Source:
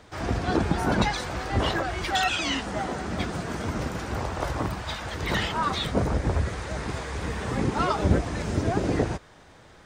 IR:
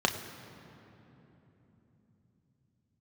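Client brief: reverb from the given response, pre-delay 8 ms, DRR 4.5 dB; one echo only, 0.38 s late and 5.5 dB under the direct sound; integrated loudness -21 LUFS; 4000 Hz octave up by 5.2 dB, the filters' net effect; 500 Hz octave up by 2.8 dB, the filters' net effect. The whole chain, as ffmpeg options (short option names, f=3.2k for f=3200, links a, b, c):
-filter_complex "[0:a]equalizer=f=500:t=o:g=3.5,equalizer=f=4k:t=o:g=6.5,aecho=1:1:380:0.531,asplit=2[a][b];[1:a]atrim=start_sample=2205,adelay=8[c];[b][c]afir=irnorm=-1:irlink=0,volume=-15.5dB[d];[a][d]amix=inputs=2:normalize=0,volume=2.5dB"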